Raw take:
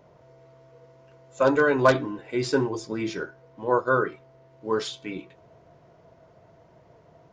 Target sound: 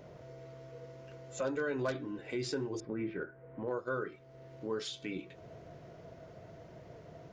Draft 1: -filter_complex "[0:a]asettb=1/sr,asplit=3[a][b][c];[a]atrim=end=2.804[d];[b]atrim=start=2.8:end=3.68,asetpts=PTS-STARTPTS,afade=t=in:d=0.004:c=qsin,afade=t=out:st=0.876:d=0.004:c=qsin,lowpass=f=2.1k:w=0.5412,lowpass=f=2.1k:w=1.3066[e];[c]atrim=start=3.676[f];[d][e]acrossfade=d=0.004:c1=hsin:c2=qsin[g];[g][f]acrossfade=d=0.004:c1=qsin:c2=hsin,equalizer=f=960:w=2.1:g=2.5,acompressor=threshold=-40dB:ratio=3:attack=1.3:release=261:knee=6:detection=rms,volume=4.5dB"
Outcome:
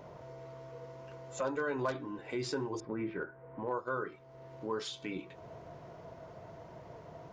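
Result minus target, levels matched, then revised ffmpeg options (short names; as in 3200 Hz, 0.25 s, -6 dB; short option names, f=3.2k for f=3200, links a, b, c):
1000 Hz band +6.0 dB
-filter_complex "[0:a]asettb=1/sr,asplit=3[a][b][c];[a]atrim=end=2.804[d];[b]atrim=start=2.8:end=3.68,asetpts=PTS-STARTPTS,afade=t=in:d=0.004:c=qsin,afade=t=out:st=0.876:d=0.004:c=qsin,lowpass=f=2.1k:w=0.5412,lowpass=f=2.1k:w=1.3066[e];[c]atrim=start=3.676[f];[d][e]acrossfade=d=0.004:c1=hsin:c2=qsin[g];[g][f]acrossfade=d=0.004:c1=qsin:c2=hsin,equalizer=f=960:w=2.1:g=-8,acompressor=threshold=-40dB:ratio=3:attack=1.3:release=261:knee=6:detection=rms,volume=4.5dB"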